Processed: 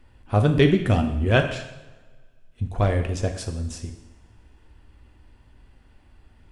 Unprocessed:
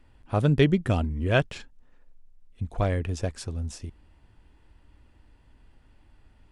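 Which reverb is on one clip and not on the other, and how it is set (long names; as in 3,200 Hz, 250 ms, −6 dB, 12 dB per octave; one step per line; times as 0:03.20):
coupled-rooms reverb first 0.84 s, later 2.1 s, from −20 dB, DRR 5 dB
level +3 dB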